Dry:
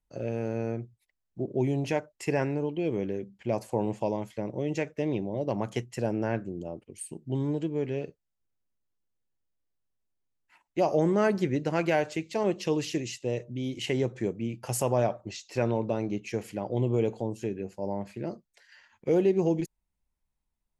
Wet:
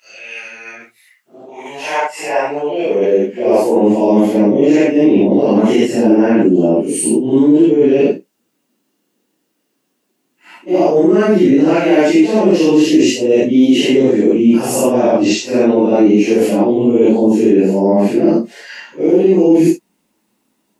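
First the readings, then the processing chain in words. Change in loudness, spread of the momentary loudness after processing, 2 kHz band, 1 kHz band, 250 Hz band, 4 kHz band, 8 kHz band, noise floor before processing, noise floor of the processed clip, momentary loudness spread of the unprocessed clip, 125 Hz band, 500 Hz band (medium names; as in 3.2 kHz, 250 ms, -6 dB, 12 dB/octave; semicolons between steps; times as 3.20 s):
+18.0 dB, 9 LU, +14.5 dB, +14.5 dB, +20.5 dB, +17.5 dB, +17.0 dB, -82 dBFS, -67 dBFS, 12 LU, +7.5 dB, +17.0 dB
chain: phase randomisation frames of 200 ms; reverse; compression 12:1, threshold -36 dBFS, peak gain reduction 17.5 dB; reverse; high-pass sweep 2.3 kHz -> 300 Hz, 0.33–4.00 s; small resonant body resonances 200/2800 Hz, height 8 dB, ringing for 30 ms; loudness maximiser +25 dB; trim -1 dB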